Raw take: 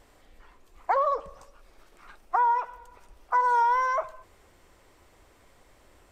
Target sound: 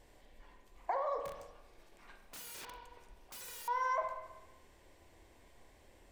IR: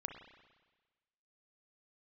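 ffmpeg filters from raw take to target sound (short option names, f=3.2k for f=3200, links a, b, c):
-filter_complex "[0:a]equalizer=f=1.3k:w=6.4:g=-14,acompressor=threshold=-27dB:ratio=10,asettb=1/sr,asplit=3[a][b][c];[a]atrim=end=1.244[d];[b]atrim=start=1.24:end=3.68,asetpts=PTS-STARTPTS,afade=t=in:d=0.004:c=qsin,afade=t=out:st=2.436:d=0.004:c=qsin,aeval=exprs='(mod(84.1*val(0)+1,2)-1)/84.1':c=same[e];[c]atrim=start=3.676[f];[d][e]acrossfade=d=0.004:c1=hsin:c2=qsin[g];[g][f]acrossfade=d=0.004:c1=qsin:c2=hsin[h];[1:a]atrim=start_sample=2205,asetrate=52920,aresample=44100[i];[h][i]afir=irnorm=-1:irlink=0"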